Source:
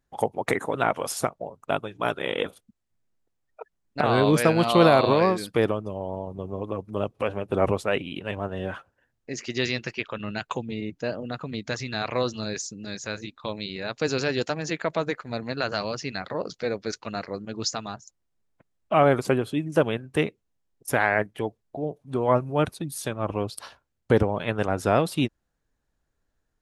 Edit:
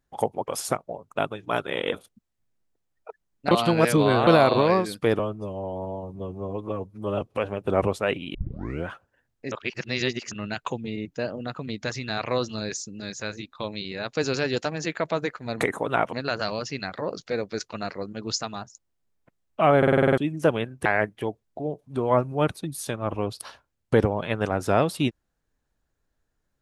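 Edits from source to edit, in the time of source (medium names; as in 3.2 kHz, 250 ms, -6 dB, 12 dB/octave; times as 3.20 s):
0.48–1.00 s: move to 15.45 s
4.03–4.79 s: reverse
5.71–7.06 s: stretch 1.5×
8.19 s: tape start 0.53 s
9.36–10.16 s: reverse
19.10 s: stutter in place 0.05 s, 8 plays
20.18–21.03 s: delete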